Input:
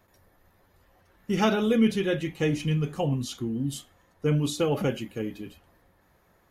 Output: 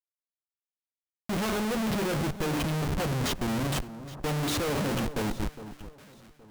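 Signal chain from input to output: 4.79–5.21 s: hum notches 60/120/180/240/300/360/420/480/540 Hz; Schmitt trigger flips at -35.5 dBFS; echo whose repeats swap between lows and highs 410 ms, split 1.3 kHz, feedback 51%, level -12.5 dB

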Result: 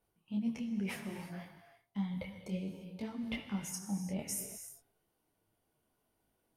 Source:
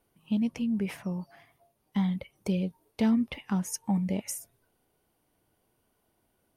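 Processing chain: gate -59 dBFS, range -9 dB; reverse; compression 6:1, threshold -38 dBFS, peak gain reduction 16 dB; reverse; gated-style reverb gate 370 ms flat, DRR 6 dB; detune thickener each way 22 cents; trim +5.5 dB

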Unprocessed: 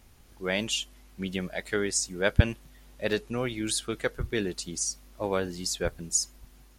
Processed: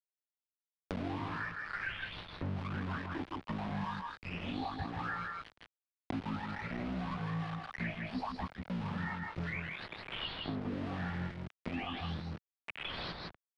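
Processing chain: delay that grows with frequency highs late, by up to 322 ms; high-pass 140 Hz 24 dB/octave; bass shelf 180 Hz -10 dB; comb 5.8 ms, depth 42%; reverse; compression 10:1, threshold -44 dBFS, peak gain reduction 22.5 dB; reverse; rotary cabinet horn 5 Hz; small samples zeroed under -50 dBFS; distance through air 99 m; delay 80 ms -5.5 dB; speed mistake 15 ips tape played at 7.5 ips; three bands compressed up and down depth 100%; trim +10.5 dB

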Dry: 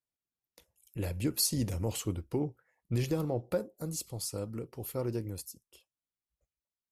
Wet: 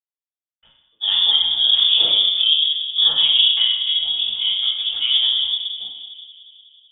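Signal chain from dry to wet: expander -56 dBFS; in parallel at -2 dB: compressor with a negative ratio -33 dBFS; on the sum: filtered feedback delay 185 ms, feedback 68%, low-pass 2.4 kHz, level -14 dB; reverberation RT60 0.85 s, pre-delay 46 ms; frequency inversion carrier 3.5 kHz; trim -2 dB

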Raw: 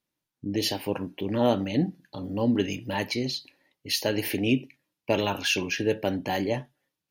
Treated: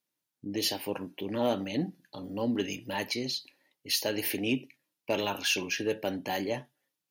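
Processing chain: high-pass 200 Hz 6 dB/octave; treble shelf 5.1 kHz +6 dB; saturation -12 dBFS, distortion -24 dB; trim -3.5 dB

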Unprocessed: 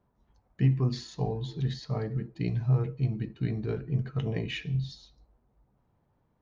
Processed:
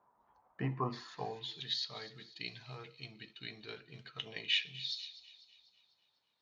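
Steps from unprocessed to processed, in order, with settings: feedback echo behind a high-pass 248 ms, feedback 50%, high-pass 2.7 kHz, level -15 dB; band-pass sweep 1 kHz -> 3.7 kHz, 0.96–1.66 s; trim +10.5 dB

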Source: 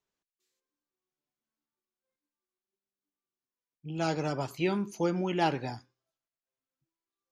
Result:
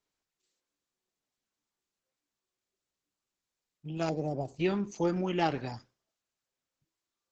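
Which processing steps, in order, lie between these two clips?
4.09–4.60 s: FFT filter 750 Hz 0 dB, 1.2 kHz -25 dB, 7 kHz -10 dB; Opus 10 kbps 48 kHz

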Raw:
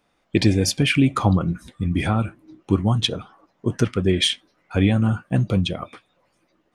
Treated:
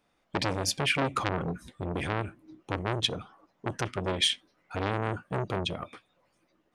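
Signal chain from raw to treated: transformer saturation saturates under 1.9 kHz; trim -5 dB

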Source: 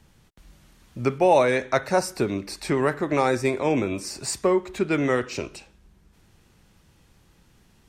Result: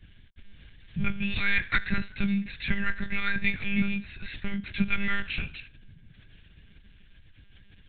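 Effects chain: Chebyshev band-stop 220–1500 Hz, order 4; monotone LPC vocoder at 8 kHz 200 Hz; trim +6.5 dB

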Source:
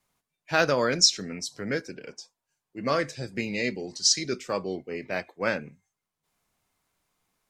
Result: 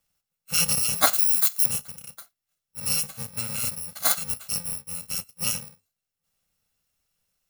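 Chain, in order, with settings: bit-reversed sample order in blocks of 128 samples; 1.13–1.66 s: tilt EQ +4 dB/octave

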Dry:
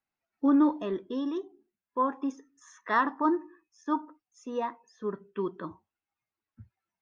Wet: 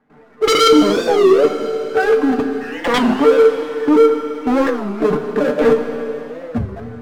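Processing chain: pitch shift switched off and on +7 st, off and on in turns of 360 ms; recorder AGC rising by 17 dB/s; low-pass 1.8 kHz 24 dB/octave; level held to a coarse grid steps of 23 dB; peak limiter -24.5 dBFS, peak gain reduction 8 dB; small resonant body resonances 240/440 Hz, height 16 dB, ringing for 55 ms; power-law waveshaper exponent 0.7; sine folder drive 15 dB, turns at -9.5 dBFS; feedback comb 150 Hz, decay 0.16 s, harmonics all, mix 80%; Schroeder reverb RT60 3.5 s, combs from 26 ms, DRR 6 dB; warped record 33 1/3 rpm, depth 250 cents; trim +5.5 dB

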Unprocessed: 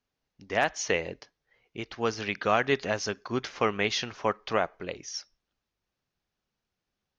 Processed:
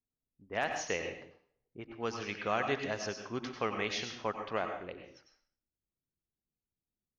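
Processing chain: level-controlled noise filter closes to 370 Hz, open at -25.5 dBFS; plate-style reverb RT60 0.51 s, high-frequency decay 1×, pre-delay 80 ms, DRR 5 dB; trim -8 dB

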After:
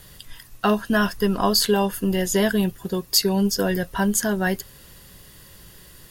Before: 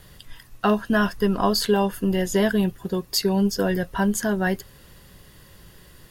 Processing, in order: treble shelf 3.8 kHz +7.5 dB

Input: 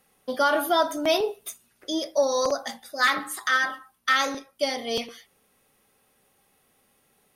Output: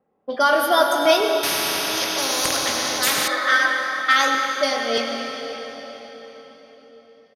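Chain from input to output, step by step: level-controlled noise filter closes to 600 Hz, open at -20 dBFS; high-pass 330 Hz 6 dB/octave; doubling 22 ms -10.5 dB; on a send at -2 dB: reverberation RT60 4.5 s, pre-delay 85 ms; 1.43–3.28 s: on the sum: spectrum-flattening compressor 4:1; trim +4.5 dB

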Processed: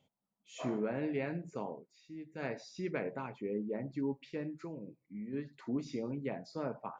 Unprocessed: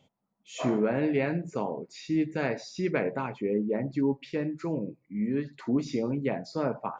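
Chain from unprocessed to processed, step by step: 1.71–2.45 s: dip -11 dB, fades 0.13 s; 4.64–5.33 s: compression, threshold -31 dBFS, peak gain reduction 6 dB; trim -9 dB

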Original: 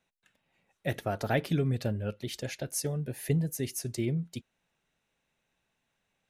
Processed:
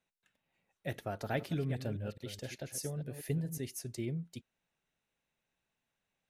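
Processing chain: 1.12–3.58 s: chunks repeated in reverse 212 ms, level -9.5 dB; trim -7 dB

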